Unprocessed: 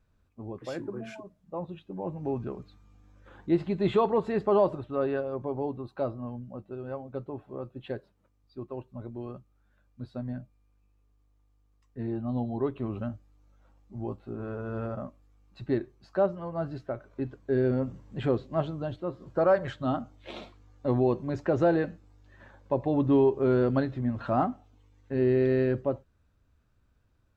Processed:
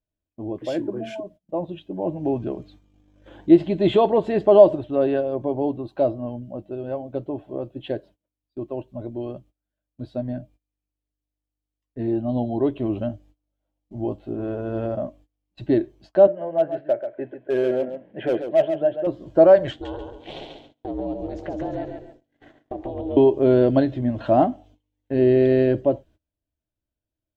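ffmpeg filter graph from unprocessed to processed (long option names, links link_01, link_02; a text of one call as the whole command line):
ffmpeg -i in.wav -filter_complex "[0:a]asettb=1/sr,asplit=3[link_01][link_02][link_03];[link_01]atrim=end=16.274[link_04];[link_02]atrim=start=16.27:end=19.07,asetpts=PTS-STARTPTS,afade=type=in:duration=0.004:curve=qsin,afade=type=out:start_time=2.796:duration=0.004:curve=qsin,highpass=270,equalizer=frequency=280:width_type=q:width=4:gain=-9,equalizer=frequency=570:width_type=q:width=4:gain=4,equalizer=frequency=1100:width_type=q:width=4:gain=-9,equalizer=frequency=1700:width_type=q:width=4:gain=6,lowpass=frequency=2400:width=0.5412,lowpass=frequency=2400:width=1.3066,volume=24.5dB,asoftclip=hard,volume=-24.5dB,aecho=1:1:136:0.355,atrim=end_sample=123480[link_05];[link_03]atrim=start=19.066[link_06];[link_04][link_05]acrossfade=duration=0.004:curve1=hsin:curve2=qsin[link_07];[link_07][link_06]acrossfade=duration=0.004:curve1=qsin:curve2=hsin,asettb=1/sr,asplit=3[link_08][link_09][link_10];[link_08]atrim=end=19.714[link_11];[link_09]atrim=start=19.71:end=23.17,asetpts=PTS-STARTPTS,afade=type=in:duration=0.004:curve=qsin,afade=type=out:start_time=3.456:duration=0.004:curve=qsin,acompressor=threshold=-34dB:ratio=5:attack=3.2:release=140:knee=1:detection=peak,aeval=exprs='val(0)*sin(2*PI*190*n/s)':channel_layout=same,aecho=1:1:139|278|417|556:0.562|0.174|0.054|0.0168,atrim=end_sample=152586[link_12];[link_10]atrim=start=23.166[link_13];[link_11][link_12]acrossfade=duration=0.004:curve1=hsin:curve2=qsin[link_14];[link_14][link_13]acrossfade=duration=0.004:curve1=qsin:curve2=hsin,agate=range=-24dB:threshold=-55dB:ratio=16:detection=peak,equalizer=frequency=315:width_type=o:width=0.33:gain=11,equalizer=frequency=630:width_type=o:width=0.33:gain=11,equalizer=frequency=1250:width_type=o:width=0.33:gain=-10,equalizer=frequency=3150:width_type=o:width=0.33:gain=9,volume=4dB" out.wav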